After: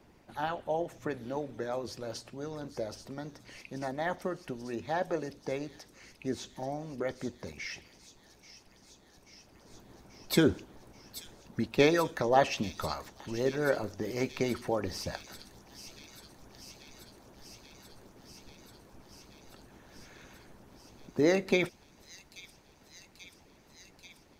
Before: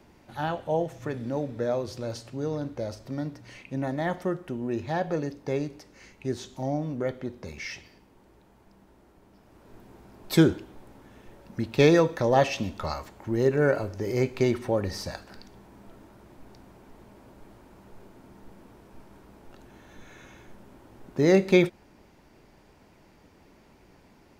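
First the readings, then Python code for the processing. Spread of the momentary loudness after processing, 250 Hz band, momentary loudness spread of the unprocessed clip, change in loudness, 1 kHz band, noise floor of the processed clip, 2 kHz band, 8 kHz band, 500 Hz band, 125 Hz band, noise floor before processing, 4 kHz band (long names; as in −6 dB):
24 LU, −6.5 dB, 16 LU, −5.5 dB, −2.5 dB, −61 dBFS, −3.0 dB, −0.5 dB, −6.0 dB, −9.5 dB, −58 dBFS, −1.5 dB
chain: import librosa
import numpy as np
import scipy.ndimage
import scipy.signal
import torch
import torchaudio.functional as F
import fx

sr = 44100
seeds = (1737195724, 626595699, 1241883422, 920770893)

y = fx.hpss(x, sr, part='harmonic', gain_db=-12)
y = fx.echo_wet_highpass(y, sr, ms=835, feedback_pct=80, hz=4500.0, wet_db=-7.5)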